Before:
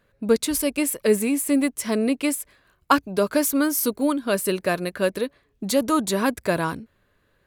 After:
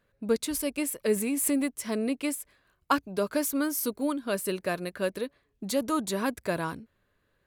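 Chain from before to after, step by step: 1.16–1.77 s: swell ahead of each attack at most 37 dB/s; trim -7 dB

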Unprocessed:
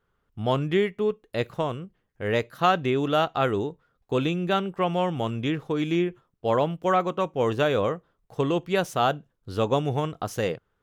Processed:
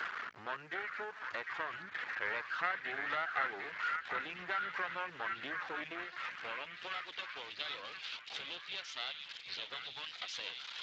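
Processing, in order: jump at every zero crossing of -28.5 dBFS; 2.77–3.47 s: hum notches 50/100/150/200/250/300/350/400 Hz; reverb removal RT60 0.74 s; compression 12:1, threshold -29 dBFS, peak gain reduction 15 dB; half-wave rectifier; band-pass sweep 1.7 kHz -> 3.5 kHz, 5.91–7.15 s; bit crusher 12-bit; repeats whose band climbs or falls 752 ms, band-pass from 1.7 kHz, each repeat 0.7 oct, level -2 dB; trim +9.5 dB; Speex 21 kbps 16 kHz

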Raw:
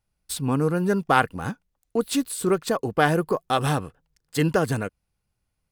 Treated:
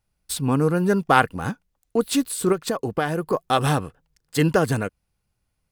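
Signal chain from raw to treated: 2.52–3.33 s: compression 5:1, threshold -23 dBFS, peak gain reduction 8.5 dB; trim +2.5 dB

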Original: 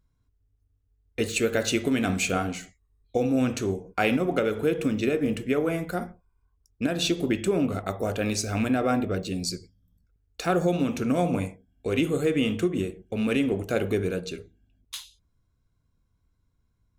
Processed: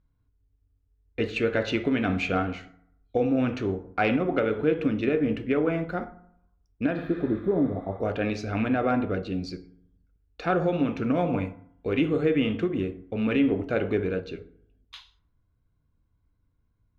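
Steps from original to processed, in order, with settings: spectral replace 7.00–7.93 s, 1–11 kHz both; dynamic bell 1.9 kHz, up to +3 dB, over -37 dBFS, Q 0.71; overload inside the chain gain 12.5 dB; distance through air 280 m; FDN reverb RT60 0.71 s, low-frequency decay 1.05×, high-frequency decay 0.5×, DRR 11.5 dB

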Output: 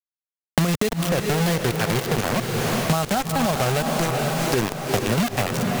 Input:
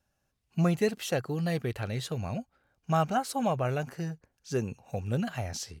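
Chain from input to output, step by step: bit crusher 5-bit; level rider gain up to 12 dB; echo that smears into a reverb 453 ms, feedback 48%, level -9 dB; loudness maximiser +12 dB; three bands compressed up and down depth 100%; trim -13 dB

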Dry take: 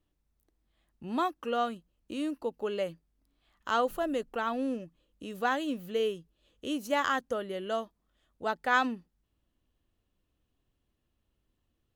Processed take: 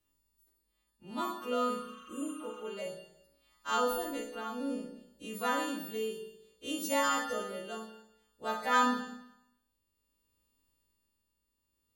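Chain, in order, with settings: partials quantised in pitch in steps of 2 st; tremolo 0.57 Hz, depth 50%; spectral replace 1.78–2.60 s, 1–6.3 kHz after; Schroeder reverb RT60 0.81 s, combs from 25 ms, DRR 1.5 dB; trim -4 dB

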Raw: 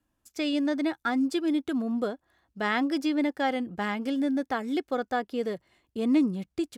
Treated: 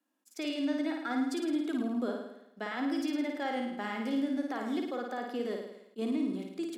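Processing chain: peak limiter -24 dBFS, peak gain reduction 10 dB; steep high-pass 210 Hz 48 dB/octave; flutter echo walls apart 9.3 m, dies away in 0.83 s; attacks held to a fixed rise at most 600 dB/s; trim -3.5 dB

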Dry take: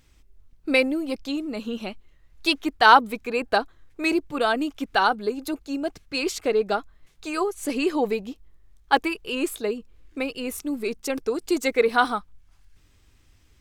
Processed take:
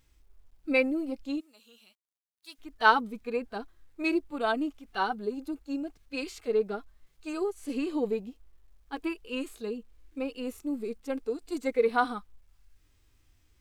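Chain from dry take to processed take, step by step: 1.40–2.59 s: differentiator; harmonic-percussive split percussive -17 dB; bit crusher 12-bit; trim -4 dB

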